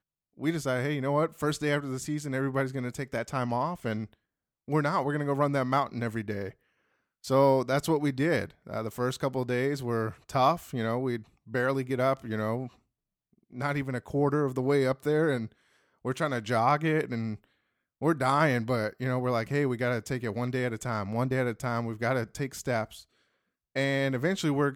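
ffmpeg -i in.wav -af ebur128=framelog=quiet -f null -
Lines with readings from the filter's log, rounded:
Integrated loudness:
  I:         -29.3 LUFS
  Threshold: -39.6 LUFS
Loudness range:
  LRA:         3.2 LU
  Threshold: -49.8 LUFS
  LRA low:   -31.6 LUFS
  LRA high:  -28.4 LUFS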